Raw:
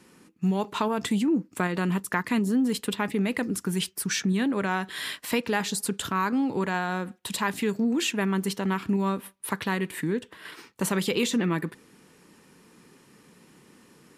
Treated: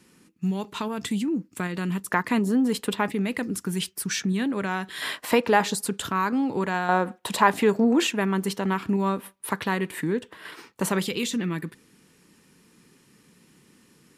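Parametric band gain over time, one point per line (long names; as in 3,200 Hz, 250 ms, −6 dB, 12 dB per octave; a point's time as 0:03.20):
parametric band 730 Hz 2.3 octaves
−6 dB
from 0:02.06 +5 dB
from 0:03.12 −1.5 dB
from 0:05.02 +10 dB
from 0:05.75 +2 dB
from 0:06.89 +12.5 dB
from 0:08.07 +3.5 dB
from 0:11.07 −7 dB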